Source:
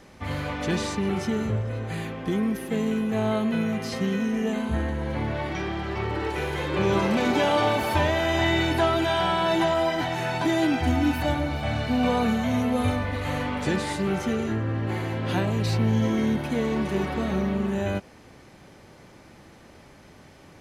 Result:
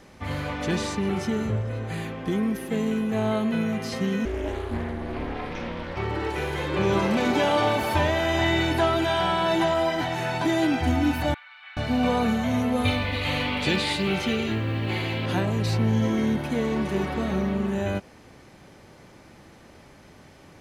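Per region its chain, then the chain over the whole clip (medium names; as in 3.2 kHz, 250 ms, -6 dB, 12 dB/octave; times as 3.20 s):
4.25–5.97 s: peaking EQ 7 kHz -6.5 dB 0.24 oct + ring modulator 160 Hz + loudspeaker Doppler distortion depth 0.32 ms
11.34–11.77 s: Bessel high-pass 2 kHz, order 8 + distance through air 450 m
12.85–15.26 s: high-order bell 3.2 kHz +10.5 dB 1.3 oct + companded quantiser 8-bit
whole clip: none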